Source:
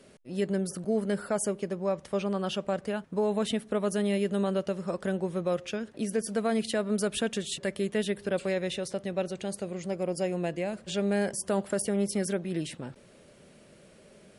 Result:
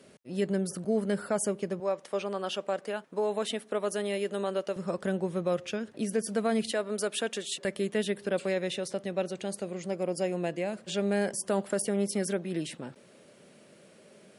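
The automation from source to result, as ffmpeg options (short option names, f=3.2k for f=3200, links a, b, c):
-af "asetnsamples=n=441:p=0,asendcmd='1.8 highpass f 340;4.76 highpass f 88;6.72 highpass f 340;7.65 highpass f 160',highpass=88"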